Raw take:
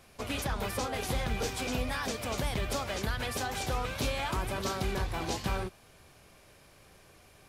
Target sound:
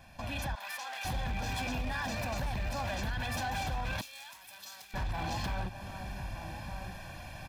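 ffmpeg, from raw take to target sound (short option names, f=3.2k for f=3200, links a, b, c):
-filter_complex "[0:a]equalizer=f=9.2k:w=0.8:g=-11,alimiter=level_in=9dB:limit=-24dB:level=0:latency=1:release=24,volume=-9dB,asplit=2[a][b];[b]adelay=1224,volume=-15dB,highshelf=f=4k:g=-27.6[c];[a][c]amix=inputs=2:normalize=0,dynaudnorm=f=230:g=5:m=10dB,aecho=1:1:1.2:0.98,acompressor=threshold=-33dB:ratio=3,aeval=exprs='0.0376*(abs(mod(val(0)/0.0376+3,4)-2)-1)':c=same,asettb=1/sr,asplit=3[d][e][f];[d]atrim=end=0.554[g];[e]atrim=start=0.55:end=1.05,asetpts=PTS-STARTPTS,afade=t=in:d=0.004:c=qsin,afade=t=out:st=0.496:d=0.004:c=qsin,highpass=1.1k[h];[f]atrim=start=1.046[i];[g][h]acrossfade=d=0.004:c1=hsin:c2=qsin[j];[j][i]acrossfade=d=0.004:c1=qsin:c2=hsin,asettb=1/sr,asplit=3[k][l][m];[k]atrim=end=2.094[n];[l]atrim=start=2.09:end=2.84,asetpts=PTS-STARTPTS,afade=t=in:d=0.004:c=qsin,afade=t=out:st=0.746:d=0.004:c=qsin,bandreject=f=3.3k:w=10[o];[m]atrim=start=2.836[p];[n][o]acrossfade=d=0.004:c1=hsin:c2=qsin[q];[q][p]acrossfade=d=0.004:c1=qsin:c2=hsin,asettb=1/sr,asplit=3[r][s][t];[r]atrim=end=4.014[u];[s]atrim=start=4.01:end=4.94,asetpts=PTS-STARTPTS,afade=t=in:d=0.004:c=qsin,afade=t=out:st=0.926:d=0.004:c=qsin,aderivative[v];[t]atrim=start=4.936[w];[u][v]acrossfade=d=0.004:c1=hsin:c2=qsin[x];[x][w]acrossfade=d=0.004:c1=qsin:c2=hsin"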